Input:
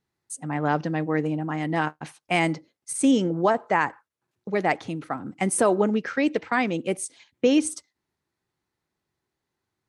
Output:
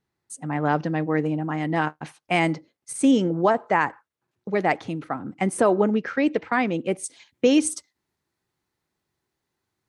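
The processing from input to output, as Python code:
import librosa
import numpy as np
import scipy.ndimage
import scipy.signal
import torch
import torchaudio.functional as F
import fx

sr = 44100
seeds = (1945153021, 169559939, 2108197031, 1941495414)

y = fx.high_shelf(x, sr, hz=4800.0, db=fx.steps((0.0, -5.5), (5.03, -11.0), (7.03, 2.5)))
y = y * librosa.db_to_amplitude(1.5)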